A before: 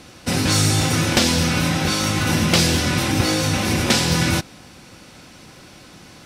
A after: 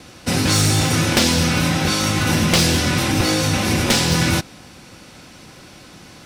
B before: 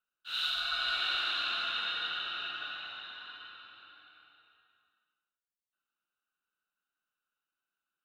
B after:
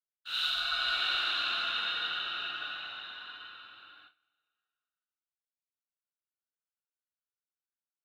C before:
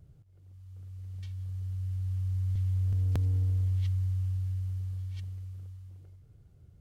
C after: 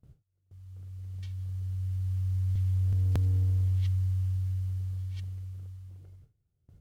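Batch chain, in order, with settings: one-sided fold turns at -11.5 dBFS; short-mantissa float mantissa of 6-bit; gate with hold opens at -46 dBFS; gain +1.5 dB

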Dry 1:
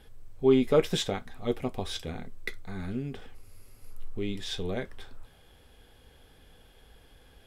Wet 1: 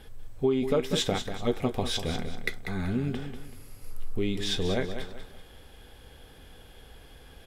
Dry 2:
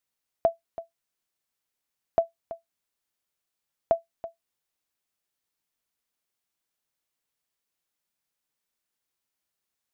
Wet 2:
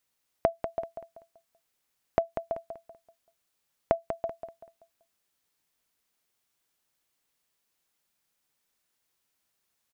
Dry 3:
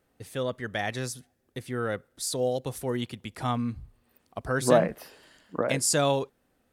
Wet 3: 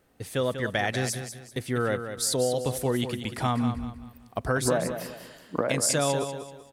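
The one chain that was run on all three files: compressor 10:1, threshold -27 dBFS; on a send: feedback echo 0.192 s, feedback 33%, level -9 dB; on the sum: gain +5.5 dB

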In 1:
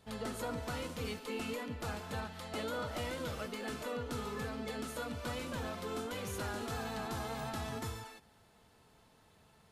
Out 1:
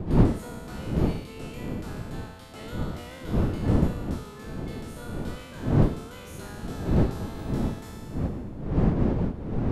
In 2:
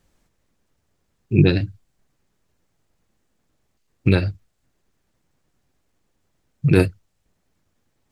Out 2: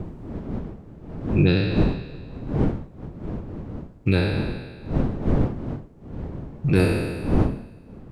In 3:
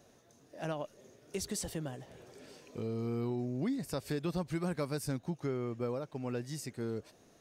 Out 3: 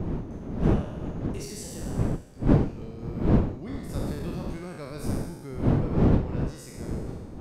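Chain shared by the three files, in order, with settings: spectral trails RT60 1.60 s; wind noise 230 Hz -21 dBFS; gain -6 dB

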